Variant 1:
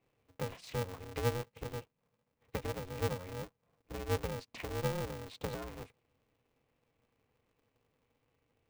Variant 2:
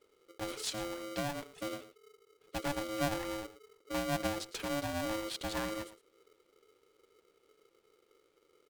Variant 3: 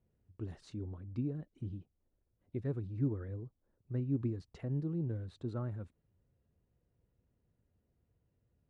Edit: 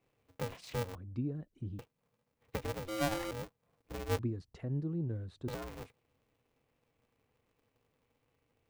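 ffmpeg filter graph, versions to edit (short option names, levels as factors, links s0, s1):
-filter_complex "[2:a]asplit=2[s0][s1];[0:a]asplit=4[s2][s3][s4][s5];[s2]atrim=end=0.952[s6];[s0]atrim=start=0.948:end=1.792[s7];[s3]atrim=start=1.788:end=2.882[s8];[1:a]atrim=start=2.878:end=3.312[s9];[s4]atrim=start=3.308:end=4.192[s10];[s1]atrim=start=4.188:end=5.482[s11];[s5]atrim=start=5.478[s12];[s6][s7]acrossfade=d=0.004:c1=hsin:c2=hsin[s13];[s13][s8]acrossfade=d=0.004:c1=hsin:c2=hsin[s14];[s14][s9]acrossfade=d=0.004:c1=hsin:c2=hsin[s15];[s15][s10]acrossfade=d=0.004:c1=hsin:c2=hsin[s16];[s16][s11]acrossfade=d=0.004:c1=hsin:c2=hsin[s17];[s17][s12]acrossfade=d=0.004:c1=hsin:c2=hsin"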